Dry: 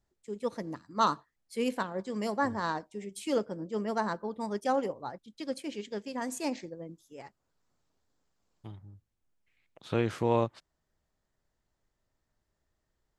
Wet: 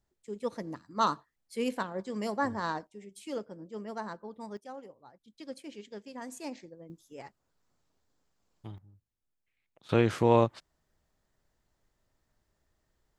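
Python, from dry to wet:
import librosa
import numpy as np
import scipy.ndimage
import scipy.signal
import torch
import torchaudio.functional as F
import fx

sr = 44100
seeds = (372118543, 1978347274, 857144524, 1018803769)

y = fx.gain(x, sr, db=fx.steps((0.0, -1.0), (2.87, -7.5), (4.57, -16.0), (5.2, -7.0), (6.9, 1.0), (8.78, -7.5), (9.89, 4.0)))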